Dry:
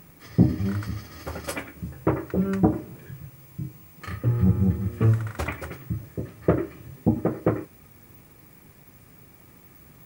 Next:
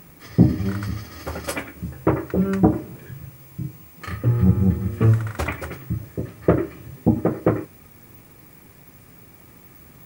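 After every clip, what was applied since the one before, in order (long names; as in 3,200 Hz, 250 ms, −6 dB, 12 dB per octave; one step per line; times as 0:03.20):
mains-hum notches 50/100/150/200 Hz
level +4 dB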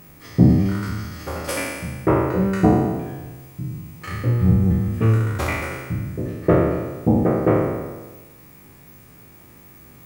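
peak hold with a decay on every bin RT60 1.33 s
level −2 dB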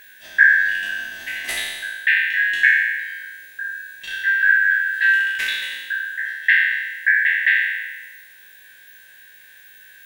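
band-splitting scrambler in four parts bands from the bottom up 4123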